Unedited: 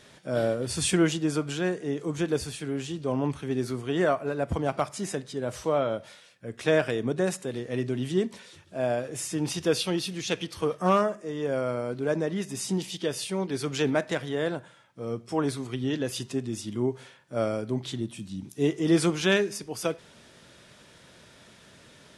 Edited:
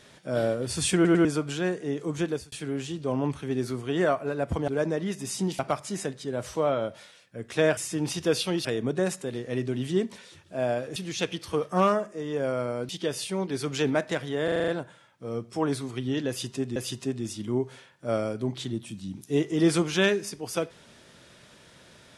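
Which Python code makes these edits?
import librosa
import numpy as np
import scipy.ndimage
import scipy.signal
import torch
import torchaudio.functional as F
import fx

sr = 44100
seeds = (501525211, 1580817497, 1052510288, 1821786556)

y = fx.edit(x, sr, fx.stutter_over(start_s=0.95, slice_s=0.1, count=3),
    fx.fade_out_span(start_s=2.25, length_s=0.27),
    fx.move(start_s=9.17, length_s=0.88, to_s=6.86),
    fx.move(start_s=11.98, length_s=0.91, to_s=4.68),
    fx.stutter(start_s=14.44, slice_s=0.04, count=7),
    fx.repeat(start_s=16.04, length_s=0.48, count=2), tone=tone)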